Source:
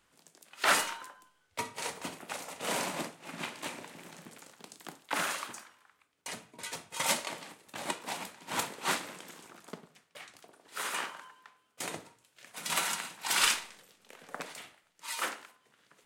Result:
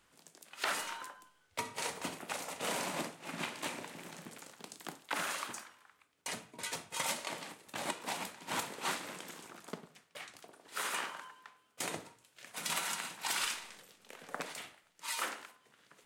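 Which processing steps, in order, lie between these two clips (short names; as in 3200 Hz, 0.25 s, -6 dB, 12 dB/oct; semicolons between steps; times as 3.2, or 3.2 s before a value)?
compressor 5:1, threshold -34 dBFS, peak gain reduction 12.5 dB; gain +1 dB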